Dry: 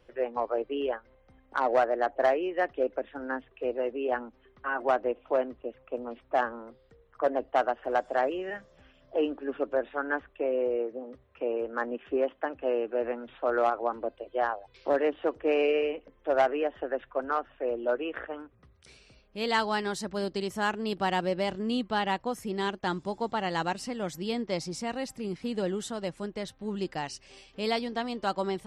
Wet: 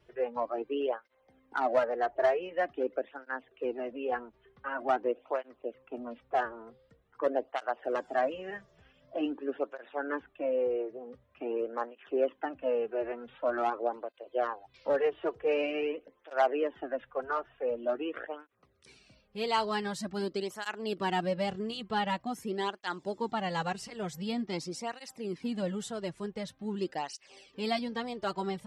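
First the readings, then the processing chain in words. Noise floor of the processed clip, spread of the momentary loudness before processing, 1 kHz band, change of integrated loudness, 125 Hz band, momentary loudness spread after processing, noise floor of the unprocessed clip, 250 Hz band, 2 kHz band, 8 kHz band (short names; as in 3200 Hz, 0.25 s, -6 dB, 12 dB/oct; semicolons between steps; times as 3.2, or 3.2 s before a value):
-69 dBFS, 10 LU, -3.0 dB, -3.0 dB, -2.0 dB, 11 LU, -62 dBFS, -3.0 dB, -4.0 dB, n/a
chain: tape flanging out of phase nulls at 0.46 Hz, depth 4 ms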